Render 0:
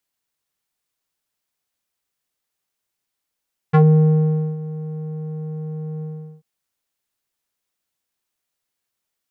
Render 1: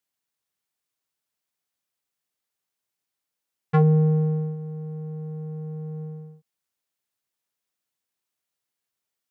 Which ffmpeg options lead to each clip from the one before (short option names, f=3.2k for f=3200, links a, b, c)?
-af "highpass=74,volume=-4.5dB"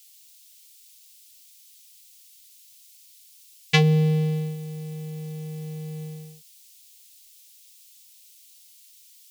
-af "aexciter=amount=15.1:drive=9.6:freq=2.2k,volume=-1dB"